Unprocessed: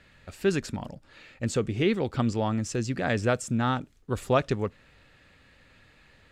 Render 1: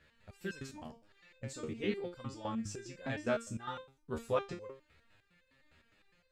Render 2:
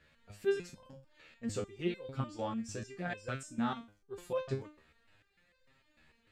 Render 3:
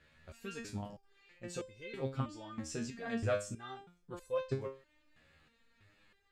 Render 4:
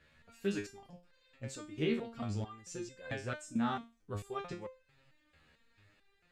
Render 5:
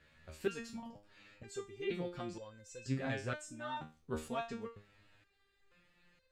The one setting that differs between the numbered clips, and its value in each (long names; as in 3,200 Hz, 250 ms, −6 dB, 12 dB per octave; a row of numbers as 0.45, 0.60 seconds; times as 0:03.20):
step-sequenced resonator, speed: 9.8, 6.7, 3.1, 4.5, 2.1 Hertz